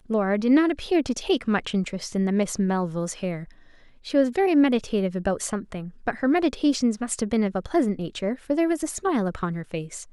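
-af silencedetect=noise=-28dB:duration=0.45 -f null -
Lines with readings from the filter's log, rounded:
silence_start: 3.43
silence_end: 4.07 | silence_duration: 0.64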